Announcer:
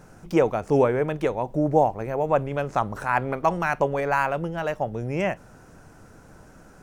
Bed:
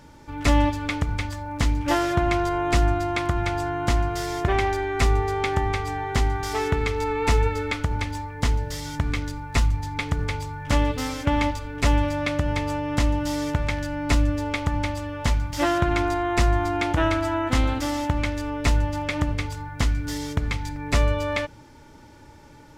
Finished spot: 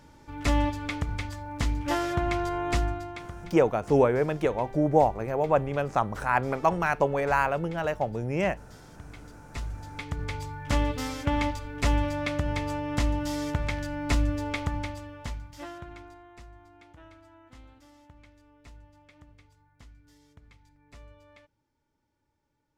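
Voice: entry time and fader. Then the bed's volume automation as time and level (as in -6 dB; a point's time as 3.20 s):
3.20 s, -1.5 dB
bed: 2.74 s -5.5 dB
3.54 s -22 dB
9.03 s -22 dB
10.44 s -4.5 dB
14.61 s -4.5 dB
16.50 s -30 dB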